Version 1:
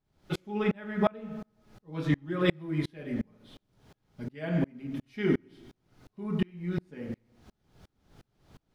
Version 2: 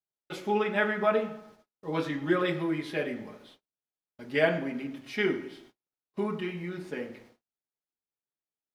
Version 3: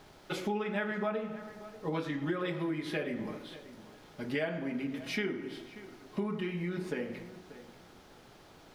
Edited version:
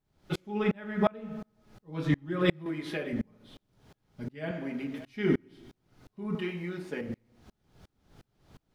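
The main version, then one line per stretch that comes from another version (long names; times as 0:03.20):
1
0:02.66–0:03.13: punch in from 3
0:04.51–0:05.05: punch in from 3
0:06.35–0:07.01: punch in from 2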